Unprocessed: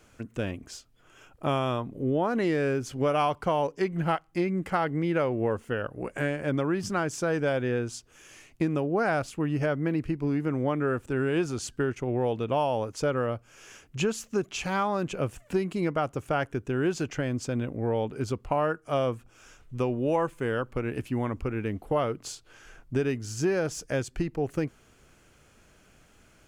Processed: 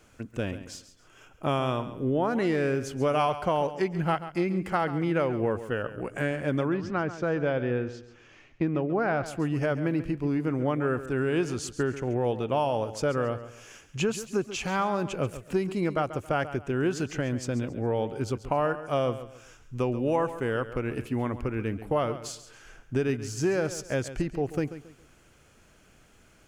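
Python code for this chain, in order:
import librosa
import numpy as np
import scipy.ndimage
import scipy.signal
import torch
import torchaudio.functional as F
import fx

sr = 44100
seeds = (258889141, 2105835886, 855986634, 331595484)

y = fx.air_absorb(x, sr, metres=220.0, at=(6.68, 9.26))
y = fx.echo_feedback(y, sr, ms=137, feedback_pct=31, wet_db=-13.0)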